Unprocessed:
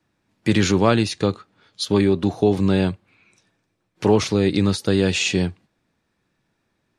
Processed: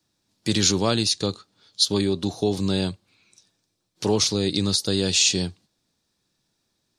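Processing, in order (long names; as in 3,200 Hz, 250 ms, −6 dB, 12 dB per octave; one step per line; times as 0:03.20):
high shelf with overshoot 3,100 Hz +11 dB, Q 1.5
level −5.5 dB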